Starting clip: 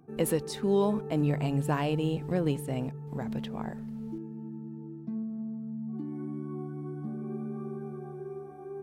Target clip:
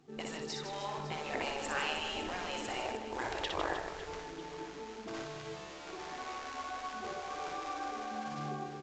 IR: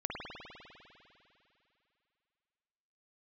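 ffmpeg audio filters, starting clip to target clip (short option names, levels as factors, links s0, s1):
-filter_complex "[0:a]dynaudnorm=f=850:g=3:m=6.68,asplit=2[s0][s1];[s1]acrusher=bits=2:mode=log:mix=0:aa=0.000001,volume=0.316[s2];[s0][s2]amix=inputs=2:normalize=0,alimiter=limit=0.299:level=0:latency=1:release=17,bandreject=f=60:t=h:w=6,bandreject=f=120:t=h:w=6,bandreject=f=180:t=h:w=6,bandreject=f=240:t=h:w=6,afftfilt=real='re*lt(hypot(re,im),0.251)':imag='im*lt(hypot(re,im),0.251)':win_size=1024:overlap=0.75,lowshelf=f=200:g=-7,asplit=2[s3][s4];[s4]aecho=0:1:60|156|309.6|555.4|948.6:0.631|0.398|0.251|0.158|0.1[s5];[s3][s5]amix=inputs=2:normalize=0,volume=0.473" -ar 16000 -c:a pcm_alaw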